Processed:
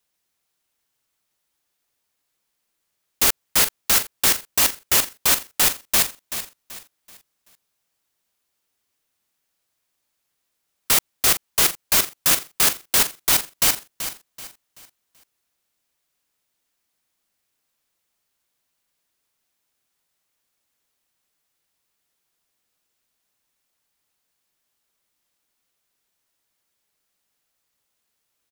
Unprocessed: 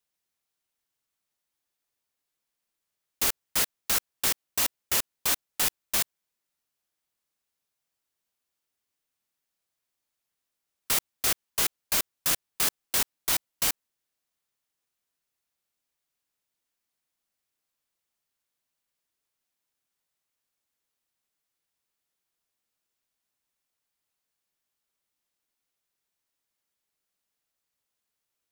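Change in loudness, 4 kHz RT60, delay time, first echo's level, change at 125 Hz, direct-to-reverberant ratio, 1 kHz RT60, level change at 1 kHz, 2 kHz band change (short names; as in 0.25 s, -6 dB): +8.0 dB, none, 0.382 s, -11.0 dB, +8.5 dB, none, none, +8.5 dB, +8.5 dB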